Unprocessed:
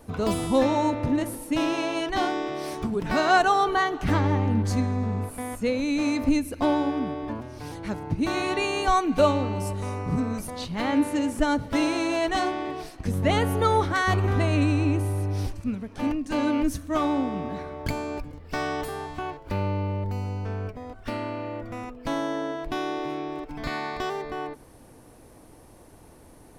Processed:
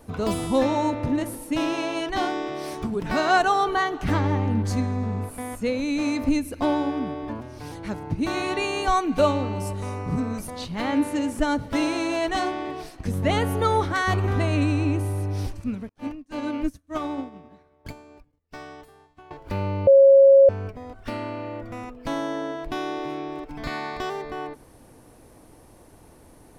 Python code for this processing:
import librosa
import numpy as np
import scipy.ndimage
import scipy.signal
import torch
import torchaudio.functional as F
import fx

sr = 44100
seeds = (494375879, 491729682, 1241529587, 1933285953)

y = fx.upward_expand(x, sr, threshold_db=-45.0, expansion=2.5, at=(15.89, 19.31))
y = fx.edit(y, sr, fx.bleep(start_s=19.87, length_s=0.62, hz=547.0, db=-9.0), tone=tone)